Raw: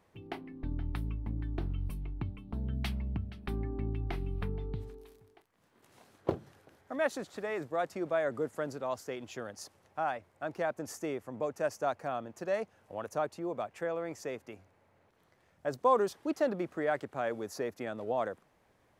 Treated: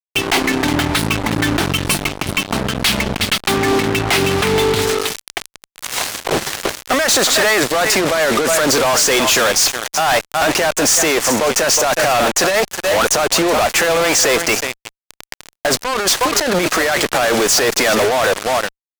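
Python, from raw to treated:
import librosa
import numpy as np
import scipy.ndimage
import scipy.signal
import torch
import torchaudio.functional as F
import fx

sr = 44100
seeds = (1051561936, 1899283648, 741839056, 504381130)

y = scipy.signal.sosfilt(scipy.signal.butter(2, 77.0, 'highpass', fs=sr, output='sos'), x)
y = fx.high_shelf(y, sr, hz=2500.0, db=-4.0)
y = y + 10.0 ** (-19.5 / 20.0) * np.pad(y, (int(365 * sr / 1000.0), 0))[:len(y)]
y = fx.over_compress(y, sr, threshold_db=-40.0, ratio=-1.0)
y = fx.weighting(y, sr, curve='ITU-R 468')
y = fx.fuzz(y, sr, gain_db=59.0, gate_db=-54.0)
y = y * 10.0 ** (1.5 / 20.0)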